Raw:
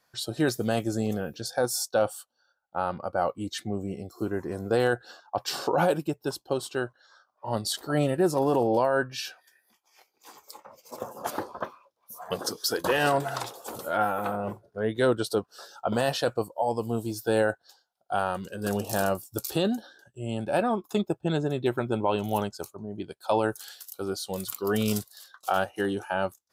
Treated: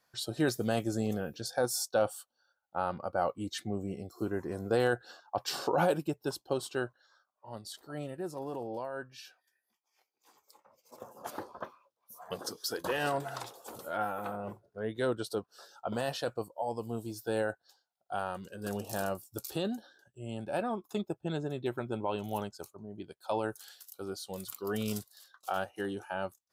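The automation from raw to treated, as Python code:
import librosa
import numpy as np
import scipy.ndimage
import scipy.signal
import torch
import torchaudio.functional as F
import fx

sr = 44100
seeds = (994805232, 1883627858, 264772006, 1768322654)

y = fx.gain(x, sr, db=fx.line((6.85, -4.0), (7.46, -15.0), (10.64, -15.0), (11.44, -8.0)))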